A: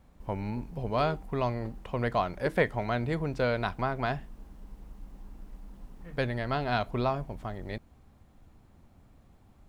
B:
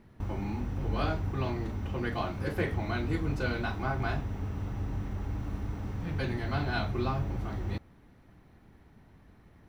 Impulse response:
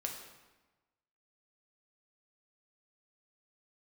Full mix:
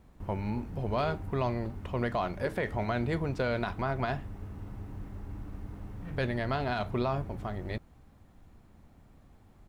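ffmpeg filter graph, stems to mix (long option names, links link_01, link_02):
-filter_complex "[0:a]volume=0dB[link_01];[1:a]adynamicsmooth=sensitivity=7:basefreq=2900,adelay=0.3,volume=-7.5dB[link_02];[link_01][link_02]amix=inputs=2:normalize=0,alimiter=limit=-21dB:level=0:latency=1:release=31"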